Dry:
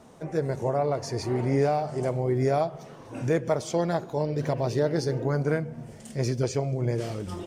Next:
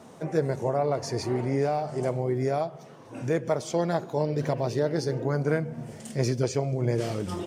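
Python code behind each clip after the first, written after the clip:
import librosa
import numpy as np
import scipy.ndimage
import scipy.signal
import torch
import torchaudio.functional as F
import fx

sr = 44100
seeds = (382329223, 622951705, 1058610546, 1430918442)

y = scipy.signal.sosfilt(scipy.signal.butter(2, 97.0, 'highpass', fs=sr, output='sos'), x)
y = fx.rider(y, sr, range_db=4, speed_s=0.5)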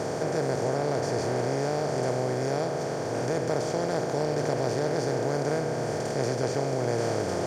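y = fx.bin_compress(x, sr, power=0.2)
y = F.gain(torch.from_numpy(y), -9.0).numpy()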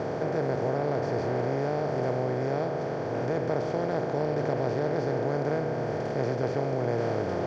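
y = fx.air_absorb(x, sr, metres=230.0)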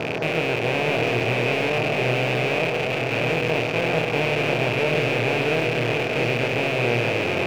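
y = fx.rattle_buzz(x, sr, strikes_db=-35.0, level_db=-18.0)
y = fx.doubler(y, sr, ms=25.0, db=-5.5)
y = y + 10.0 ** (-5.0 / 20.0) * np.pad(y, (int(639 * sr / 1000.0), 0))[:len(y)]
y = F.gain(torch.from_numpy(y), 2.5).numpy()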